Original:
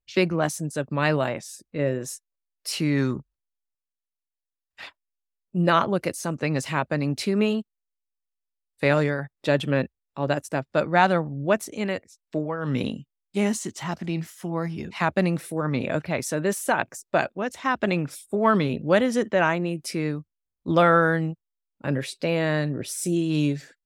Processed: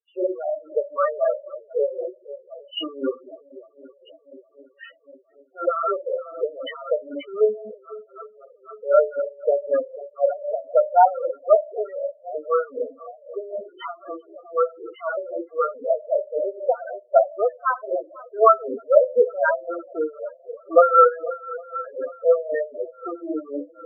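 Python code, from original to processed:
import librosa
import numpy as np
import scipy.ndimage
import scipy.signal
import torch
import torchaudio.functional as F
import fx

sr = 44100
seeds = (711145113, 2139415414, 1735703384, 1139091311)

p1 = fx.env_lowpass_down(x, sr, base_hz=1700.0, full_db=-20.0)
p2 = fx.tilt_eq(p1, sr, slope=-3.0)
p3 = fx.fuzz(p2, sr, gain_db=42.0, gate_db=-35.0)
p4 = p2 + F.gain(torch.from_numpy(p3), -12.0).numpy()
p5 = fx.cabinet(p4, sr, low_hz=470.0, low_slope=24, high_hz=3600.0, hz=(880.0, 1300.0, 3100.0), db=(-7, 9, 9))
p6 = p5 + fx.echo_swing(p5, sr, ms=812, ratio=1.5, feedback_pct=61, wet_db=-18.5, dry=0)
p7 = fx.room_shoebox(p6, sr, seeds[0], volume_m3=770.0, walls='furnished', distance_m=1.7)
p8 = fx.spec_topn(p7, sr, count=4)
p9 = p8 * 10.0 ** (-18 * (0.5 - 0.5 * np.cos(2.0 * np.pi * 3.9 * np.arange(len(p8)) / sr)) / 20.0)
y = F.gain(torch.from_numpy(p9), 7.0).numpy()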